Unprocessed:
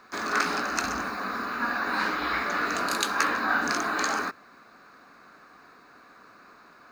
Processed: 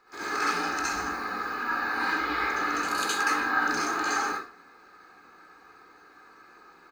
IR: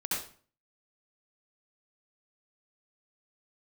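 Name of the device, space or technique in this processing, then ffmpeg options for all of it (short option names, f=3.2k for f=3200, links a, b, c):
microphone above a desk: -filter_complex "[0:a]aecho=1:1:2.4:0.57[a];[1:a]atrim=start_sample=2205[b];[a][b]afir=irnorm=-1:irlink=0,volume=-7.5dB"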